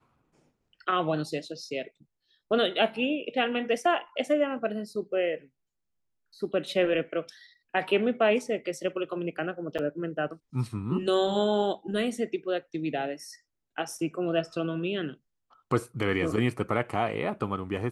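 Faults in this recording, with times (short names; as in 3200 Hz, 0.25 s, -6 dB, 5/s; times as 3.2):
9.78–9.79 gap 7.4 ms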